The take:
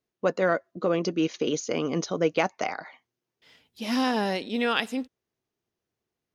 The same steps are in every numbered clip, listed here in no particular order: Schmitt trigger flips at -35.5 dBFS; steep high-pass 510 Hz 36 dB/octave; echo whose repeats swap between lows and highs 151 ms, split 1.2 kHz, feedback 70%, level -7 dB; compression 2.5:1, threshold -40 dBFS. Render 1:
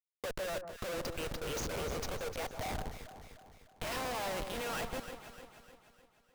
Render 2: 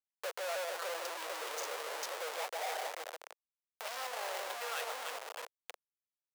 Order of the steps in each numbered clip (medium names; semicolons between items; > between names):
steep high-pass > Schmitt trigger > compression > echo whose repeats swap between lows and highs; echo whose repeats swap between lows and highs > Schmitt trigger > compression > steep high-pass